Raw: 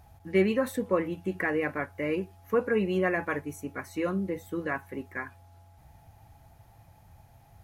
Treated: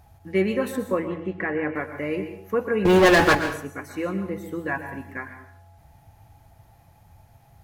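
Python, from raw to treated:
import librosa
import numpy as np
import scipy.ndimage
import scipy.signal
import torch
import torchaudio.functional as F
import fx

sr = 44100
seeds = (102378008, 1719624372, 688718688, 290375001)

y = fx.lowpass(x, sr, hz=fx.line((0.86, 5100.0), (1.74, 2200.0)), slope=12, at=(0.86, 1.74), fade=0.02)
y = fx.leveller(y, sr, passes=5, at=(2.85, 3.35))
y = fx.comb(y, sr, ms=1.2, depth=0.64, at=(4.68, 5.11))
y = fx.rev_plate(y, sr, seeds[0], rt60_s=0.59, hf_ratio=0.85, predelay_ms=105, drr_db=8.0)
y = y * 10.0 ** (1.5 / 20.0)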